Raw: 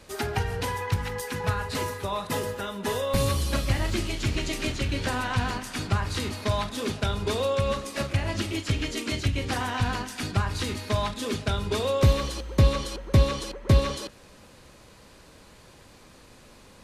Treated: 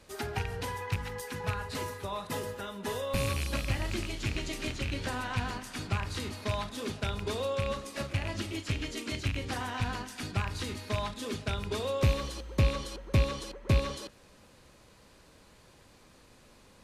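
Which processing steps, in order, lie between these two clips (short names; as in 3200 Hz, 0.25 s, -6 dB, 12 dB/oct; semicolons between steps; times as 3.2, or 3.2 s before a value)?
rattling part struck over -24 dBFS, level -18 dBFS; gain -6.5 dB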